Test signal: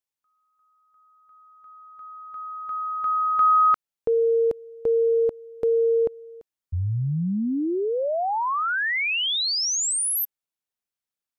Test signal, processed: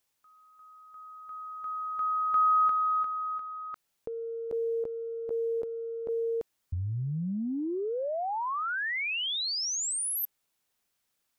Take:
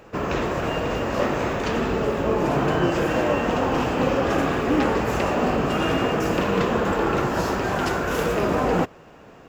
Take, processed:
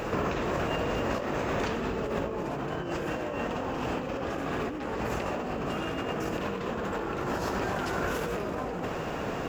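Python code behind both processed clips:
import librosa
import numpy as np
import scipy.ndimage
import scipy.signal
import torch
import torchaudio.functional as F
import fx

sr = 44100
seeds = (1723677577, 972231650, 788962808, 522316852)

y = fx.over_compress(x, sr, threshold_db=-34.0, ratio=-1.0)
y = y * 10.0 ** (2.5 / 20.0)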